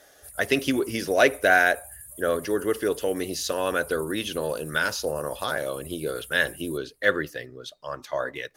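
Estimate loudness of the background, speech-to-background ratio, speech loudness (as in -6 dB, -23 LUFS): -42.0 LUFS, 16.5 dB, -25.5 LUFS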